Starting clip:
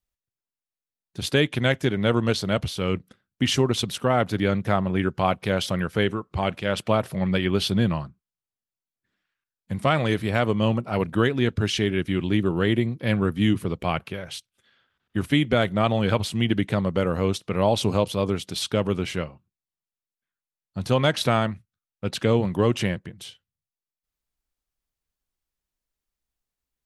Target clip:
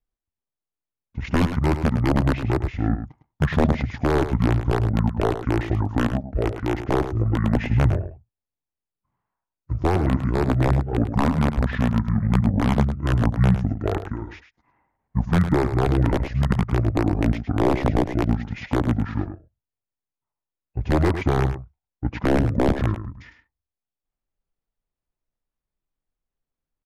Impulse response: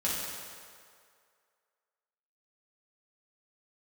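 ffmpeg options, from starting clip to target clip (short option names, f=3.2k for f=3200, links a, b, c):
-filter_complex "[0:a]aeval=exprs='(mod(3.55*val(0)+1,2)-1)/3.55':c=same,lowpass=f=1.1k:p=1,asetrate=26222,aresample=44100,atempo=1.68179,asplit=2[a][b];[b]aecho=0:1:105:0.316[c];[a][c]amix=inputs=2:normalize=0,volume=4dB"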